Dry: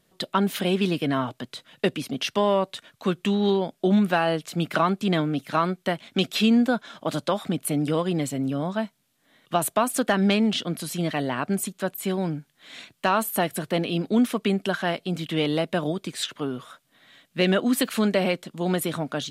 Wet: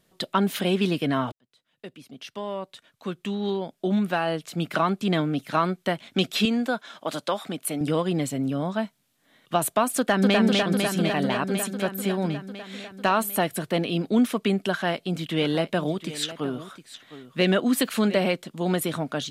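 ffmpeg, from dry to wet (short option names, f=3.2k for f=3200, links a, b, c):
-filter_complex "[0:a]asettb=1/sr,asplit=3[a][b][c];[a]atrim=end=6.454[d];[b]atrim=start=6.45:end=7.81,asetpts=PTS-STARTPTS,afade=t=in:d=0.004:c=qsin,afade=t=out:st=1.356:d=0.004:c=qsin,highpass=f=430:p=1[e];[c]atrim=start=7.806[f];[d][e]acrossfade=d=0.004:c1=hsin:c2=qsin[g];[g][f]acrossfade=d=0.004:c1=qsin:c2=hsin,asplit=2[h][i];[i]afade=t=in:st=9.97:d=0.01,afade=t=out:st=10.37:d=0.01,aecho=0:1:250|500|750|1000|1250|1500|1750|2000|2250|2500|2750|3000:0.749894|0.599915|0.479932|0.383946|0.307157|0.245725|0.19658|0.157264|0.125811|0.100649|0.0805193|0.0644154[j];[h][j]amix=inputs=2:normalize=0,asplit=3[k][l][m];[k]afade=t=out:st=15.4:d=0.02[n];[l]aecho=1:1:711:0.188,afade=t=in:st=15.4:d=0.02,afade=t=out:st=18.17:d=0.02[o];[m]afade=t=in:st=18.17:d=0.02[p];[n][o][p]amix=inputs=3:normalize=0,asplit=2[q][r];[q]atrim=end=1.32,asetpts=PTS-STARTPTS,afade=t=out:st=1.316:d=0.004:c=hsin[s];[r]atrim=start=1.32,asetpts=PTS-STARTPTS,afade=t=in:d=4.06[t];[s][t]concat=n=2:v=0:a=1"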